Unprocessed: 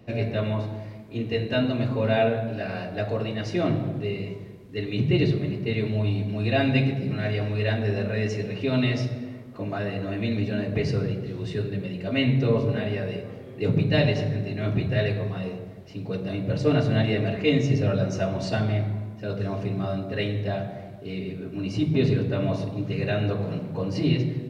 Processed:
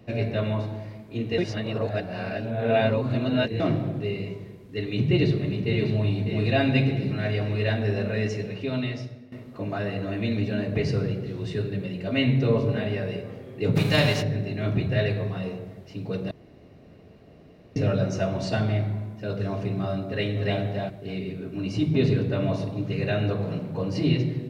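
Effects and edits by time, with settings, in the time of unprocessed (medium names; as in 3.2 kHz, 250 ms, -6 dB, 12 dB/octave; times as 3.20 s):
1.38–3.60 s: reverse
4.79–5.90 s: echo throw 600 ms, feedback 60%, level -8 dB
8.19–9.32 s: fade out, to -15.5 dB
13.75–14.21 s: formants flattened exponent 0.6
16.31–17.76 s: room tone
20.07–20.60 s: echo throw 290 ms, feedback 15%, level -2.5 dB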